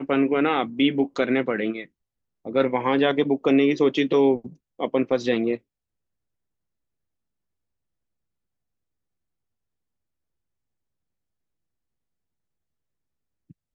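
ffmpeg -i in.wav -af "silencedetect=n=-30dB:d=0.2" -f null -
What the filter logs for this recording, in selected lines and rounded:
silence_start: 1.83
silence_end: 2.45 | silence_duration: 0.62
silence_start: 4.47
silence_end: 4.80 | silence_duration: 0.34
silence_start: 5.55
silence_end: 13.74 | silence_duration: 8.19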